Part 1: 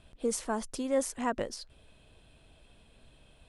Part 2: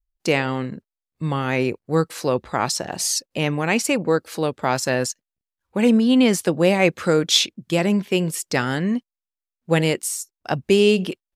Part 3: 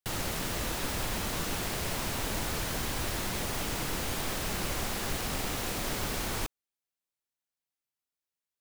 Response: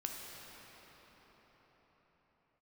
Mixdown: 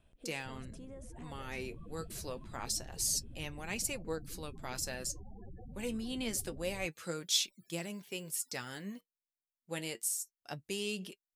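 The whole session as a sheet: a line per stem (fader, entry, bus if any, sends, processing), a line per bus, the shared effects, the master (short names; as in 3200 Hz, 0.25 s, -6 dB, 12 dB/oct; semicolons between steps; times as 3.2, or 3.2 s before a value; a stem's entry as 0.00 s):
-6.5 dB, 0.00 s, bus A, no send, compressor 10:1, threshold -37 dBFS, peak gain reduction 14.5 dB; rotary speaker horn 0.75 Hz
-4.5 dB, 0.00 s, no bus, no send, flange 0.27 Hz, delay 4.8 ms, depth 6.5 ms, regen +51%; pre-emphasis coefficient 0.8
-12.5 dB, 0.40 s, bus A, no send, upward compressor, threshold -47 dBFS; loudest bins only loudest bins 8; fast leveller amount 50%
bus A: 0.0 dB, bell 4400 Hz -6 dB; limiter -40.5 dBFS, peak gain reduction 6 dB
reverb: off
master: dry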